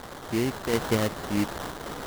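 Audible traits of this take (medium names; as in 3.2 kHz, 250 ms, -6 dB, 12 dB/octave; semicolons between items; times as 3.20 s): a quantiser's noise floor 6-bit, dither triangular; random-step tremolo 4.1 Hz; aliases and images of a low sample rate 2.5 kHz, jitter 20%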